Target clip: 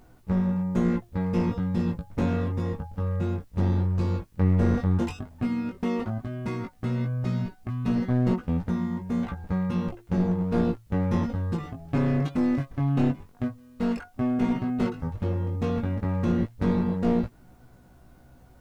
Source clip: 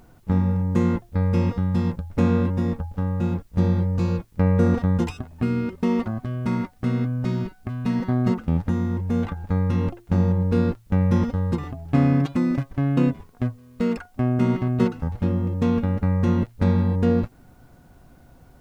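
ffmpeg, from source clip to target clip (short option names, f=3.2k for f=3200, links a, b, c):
-af "flanger=delay=16:depth=4.7:speed=0.11,aeval=exprs='clip(val(0),-1,0.075)':c=same"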